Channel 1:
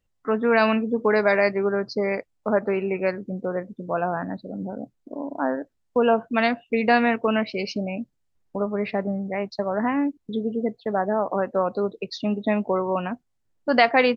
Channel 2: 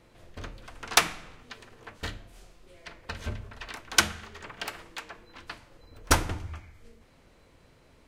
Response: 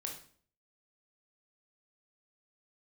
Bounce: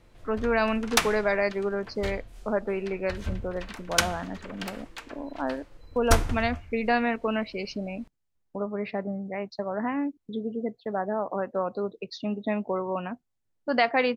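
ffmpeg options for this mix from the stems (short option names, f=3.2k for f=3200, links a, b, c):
-filter_complex "[0:a]volume=-5.5dB[a];[1:a]lowshelf=f=67:g=11.5,volume=-2dB[b];[a][b]amix=inputs=2:normalize=0"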